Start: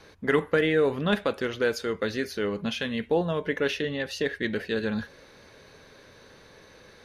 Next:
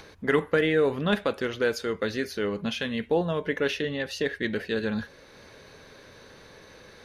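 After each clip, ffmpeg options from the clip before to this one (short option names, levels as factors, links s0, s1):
-af "acompressor=mode=upward:threshold=0.00631:ratio=2.5"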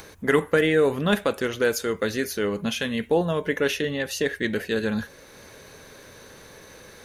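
-af "aexciter=amount=2.7:drive=7.1:freq=6400,volume=1.41"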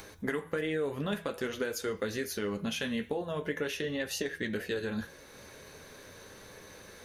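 -af "acompressor=threshold=0.0562:ratio=10,bandreject=f=164:t=h:w=4,bandreject=f=328:t=h:w=4,bandreject=f=492:t=h:w=4,bandreject=f=656:t=h:w=4,bandreject=f=820:t=h:w=4,bandreject=f=984:t=h:w=4,bandreject=f=1148:t=h:w=4,bandreject=f=1312:t=h:w=4,bandreject=f=1476:t=h:w=4,bandreject=f=1640:t=h:w=4,bandreject=f=1804:t=h:w=4,bandreject=f=1968:t=h:w=4,bandreject=f=2132:t=h:w=4,bandreject=f=2296:t=h:w=4,bandreject=f=2460:t=h:w=4,bandreject=f=2624:t=h:w=4,bandreject=f=2788:t=h:w=4,bandreject=f=2952:t=h:w=4,bandreject=f=3116:t=h:w=4,bandreject=f=3280:t=h:w=4,bandreject=f=3444:t=h:w=4,bandreject=f=3608:t=h:w=4,bandreject=f=3772:t=h:w=4,bandreject=f=3936:t=h:w=4,bandreject=f=4100:t=h:w=4,bandreject=f=4264:t=h:w=4,bandreject=f=4428:t=h:w=4,bandreject=f=4592:t=h:w=4,bandreject=f=4756:t=h:w=4,bandreject=f=4920:t=h:w=4,bandreject=f=5084:t=h:w=4,bandreject=f=5248:t=h:w=4,bandreject=f=5412:t=h:w=4,bandreject=f=5576:t=h:w=4,bandreject=f=5740:t=h:w=4,bandreject=f=5904:t=h:w=4,bandreject=f=6068:t=h:w=4,bandreject=f=6232:t=h:w=4,flanger=delay=9.8:depth=4.4:regen=-48:speed=0.46:shape=sinusoidal"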